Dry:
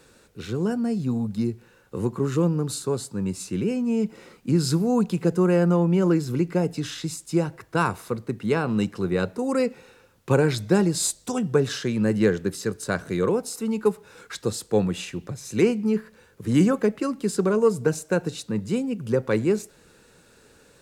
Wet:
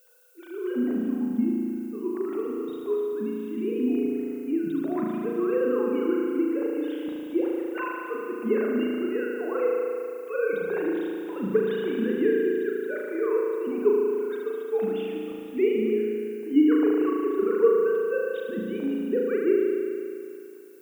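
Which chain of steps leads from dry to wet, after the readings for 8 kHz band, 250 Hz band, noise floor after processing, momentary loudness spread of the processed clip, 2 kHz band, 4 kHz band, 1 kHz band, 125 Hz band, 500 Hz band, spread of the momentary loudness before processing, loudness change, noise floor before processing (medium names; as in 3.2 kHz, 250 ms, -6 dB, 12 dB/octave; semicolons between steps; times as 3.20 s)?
under -25 dB, -2.0 dB, -39 dBFS, 9 LU, -3.0 dB, under -10 dB, -5.5 dB, -19.5 dB, +0.5 dB, 10 LU, -2.0 dB, -56 dBFS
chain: formants replaced by sine waves; spring tank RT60 2.5 s, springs 36 ms, chirp 55 ms, DRR -3 dB; added noise violet -54 dBFS; trim -6.5 dB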